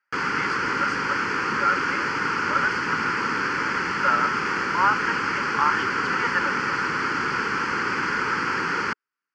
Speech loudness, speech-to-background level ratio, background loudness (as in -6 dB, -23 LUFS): -27.5 LUFS, -3.5 dB, -24.0 LUFS